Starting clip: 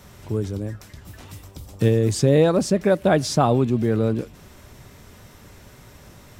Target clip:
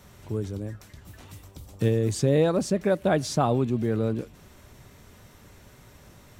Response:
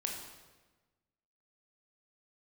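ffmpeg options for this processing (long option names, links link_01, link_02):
-af "bandreject=frequency=5100:width=20,volume=-5dB"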